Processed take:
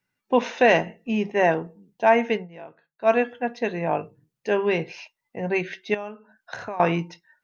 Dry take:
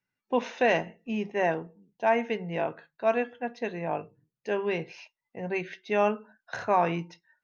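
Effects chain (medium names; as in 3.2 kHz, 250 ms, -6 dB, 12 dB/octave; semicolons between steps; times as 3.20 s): 2.36–3.10 s: dip -18 dB, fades 0.12 s; 5.94–6.80 s: compression 5:1, threshold -39 dBFS, peak gain reduction 18 dB; trim +6.5 dB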